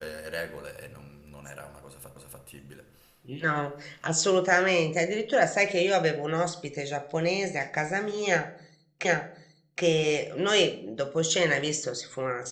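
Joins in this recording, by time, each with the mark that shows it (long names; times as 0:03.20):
0:02.16: the same again, the last 0.29 s
0:09.05: the same again, the last 0.77 s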